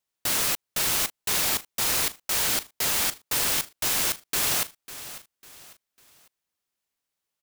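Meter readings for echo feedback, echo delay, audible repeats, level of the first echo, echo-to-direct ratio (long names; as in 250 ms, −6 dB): 36%, 549 ms, 3, −15.0 dB, −14.5 dB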